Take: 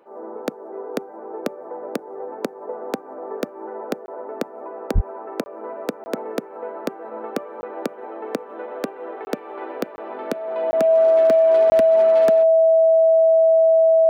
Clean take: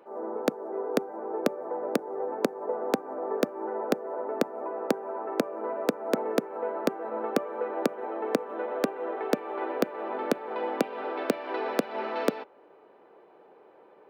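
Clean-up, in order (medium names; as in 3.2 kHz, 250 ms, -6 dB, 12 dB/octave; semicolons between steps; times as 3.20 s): clip repair -10.5 dBFS; band-stop 650 Hz, Q 30; de-plosive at 4.94 s; interpolate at 4.06/5.44/6.04/7.61/9.25/9.96/10.71/11.70 s, 20 ms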